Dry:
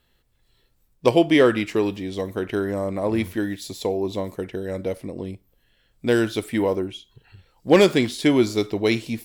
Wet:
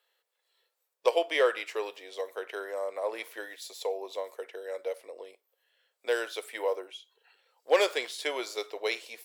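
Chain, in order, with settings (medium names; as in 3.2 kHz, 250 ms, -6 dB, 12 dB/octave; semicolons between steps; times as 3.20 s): Chebyshev high-pass 470 Hz, order 4; trim -5.5 dB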